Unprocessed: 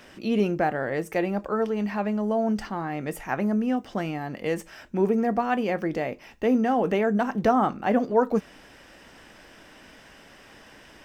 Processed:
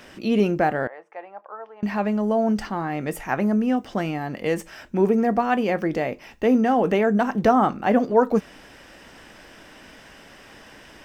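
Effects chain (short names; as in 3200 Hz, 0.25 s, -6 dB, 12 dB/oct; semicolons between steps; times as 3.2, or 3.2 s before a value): 0.87–1.83 ladder band-pass 1000 Hz, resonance 40%; gain +3.5 dB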